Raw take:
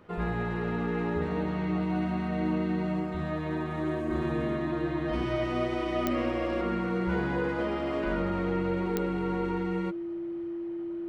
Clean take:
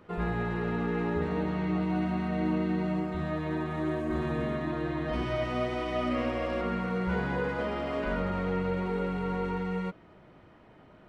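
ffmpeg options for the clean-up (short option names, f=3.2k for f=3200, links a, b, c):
-af "adeclick=t=4,bandreject=f=340:w=30"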